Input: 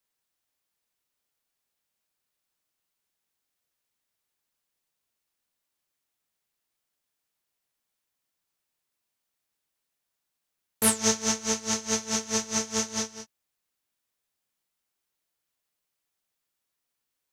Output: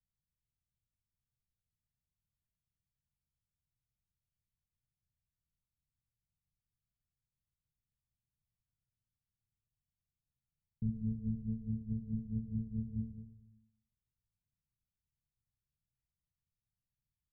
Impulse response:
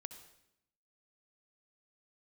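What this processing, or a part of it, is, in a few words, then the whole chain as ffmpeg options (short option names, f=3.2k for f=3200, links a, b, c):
club heard from the street: -filter_complex "[0:a]alimiter=limit=-15.5dB:level=0:latency=1,lowpass=f=140:w=0.5412,lowpass=f=140:w=1.3066[a];[1:a]atrim=start_sample=2205[b];[a][b]afir=irnorm=-1:irlink=0,volume=16dB"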